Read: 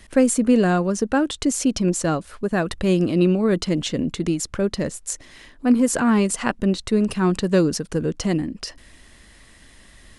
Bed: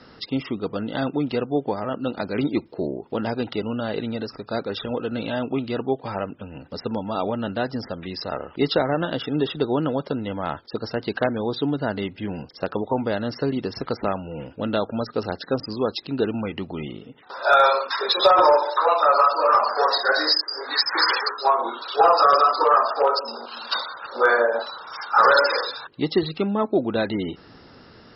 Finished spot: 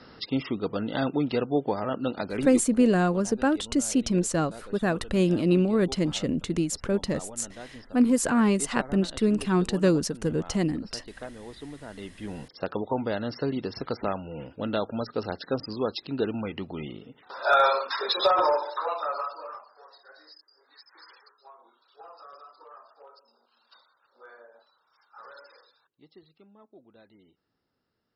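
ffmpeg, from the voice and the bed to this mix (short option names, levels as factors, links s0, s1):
-filter_complex "[0:a]adelay=2300,volume=0.631[s0];[1:a]volume=3.55,afade=t=out:st=2.04:d=0.84:silence=0.16788,afade=t=in:st=11.87:d=0.64:silence=0.223872,afade=t=out:st=17.94:d=1.71:silence=0.0398107[s1];[s0][s1]amix=inputs=2:normalize=0"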